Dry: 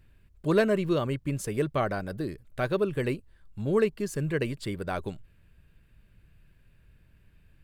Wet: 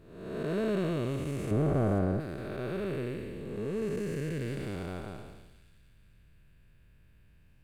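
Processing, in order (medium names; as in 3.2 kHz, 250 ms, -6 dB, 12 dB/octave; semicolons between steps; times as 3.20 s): spectral blur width 499 ms; 1.51–2.20 s: tilt shelf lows +8.5 dB, about 1.2 kHz; on a send: feedback echo behind a high-pass 477 ms, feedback 33%, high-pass 3.3 kHz, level -9.5 dB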